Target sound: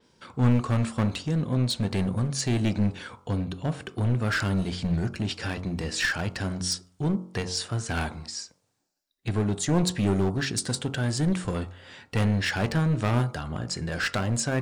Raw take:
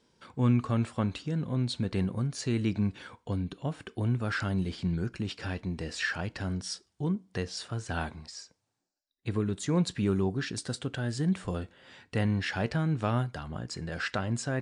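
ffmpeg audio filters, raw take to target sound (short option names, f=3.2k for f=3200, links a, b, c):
-af "aeval=exprs='clip(val(0),-1,0.0355)':c=same,bandreject=f=45.32:t=h:w=4,bandreject=f=90.64:t=h:w=4,bandreject=f=135.96:t=h:w=4,bandreject=f=181.28:t=h:w=4,bandreject=f=226.6:t=h:w=4,bandreject=f=271.92:t=h:w=4,bandreject=f=317.24:t=h:w=4,bandreject=f=362.56:t=h:w=4,bandreject=f=407.88:t=h:w=4,bandreject=f=453.2:t=h:w=4,bandreject=f=498.52:t=h:w=4,bandreject=f=543.84:t=h:w=4,bandreject=f=589.16:t=h:w=4,bandreject=f=634.48:t=h:w=4,bandreject=f=679.8:t=h:w=4,bandreject=f=725.12:t=h:w=4,bandreject=f=770.44:t=h:w=4,bandreject=f=815.76:t=h:w=4,bandreject=f=861.08:t=h:w=4,bandreject=f=906.4:t=h:w=4,bandreject=f=951.72:t=h:w=4,bandreject=f=997.04:t=h:w=4,bandreject=f=1.04236k:t=h:w=4,bandreject=f=1.08768k:t=h:w=4,bandreject=f=1.133k:t=h:w=4,bandreject=f=1.17832k:t=h:w=4,bandreject=f=1.22364k:t=h:w=4,bandreject=f=1.26896k:t=h:w=4,bandreject=f=1.31428k:t=h:w=4,bandreject=f=1.3596k:t=h:w=4,bandreject=f=1.40492k:t=h:w=4,adynamicequalizer=threshold=0.00316:dfrequency=5300:dqfactor=0.7:tfrequency=5300:tqfactor=0.7:attack=5:release=100:ratio=0.375:range=2.5:mode=boostabove:tftype=highshelf,volume=6dB"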